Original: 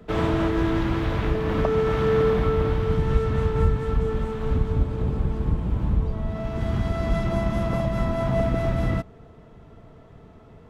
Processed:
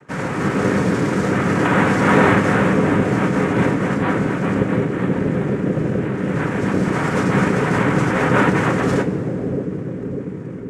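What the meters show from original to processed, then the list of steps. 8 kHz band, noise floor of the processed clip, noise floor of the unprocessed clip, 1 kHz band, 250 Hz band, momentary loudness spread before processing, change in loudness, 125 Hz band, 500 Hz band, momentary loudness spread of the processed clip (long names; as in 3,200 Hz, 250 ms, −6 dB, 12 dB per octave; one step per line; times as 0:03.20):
can't be measured, −28 dBFS, −48 dBFS, +10.0 dB, +10.0 dB, 5 LU, +6.0 dB, +3.5 dB, +5.0 dB, 8 LU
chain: low-pass filter 1,900 Hz
automatic gain control gain up to 7 dB
cochlear-implant simulation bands 3
bucket-brigade delay 596 ms, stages 2,048, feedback 67%, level −4 dB
coupled-rooms reverb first 0.22 s, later 3 s, from −18 dB, DRR 4.5 dB
level −1 dB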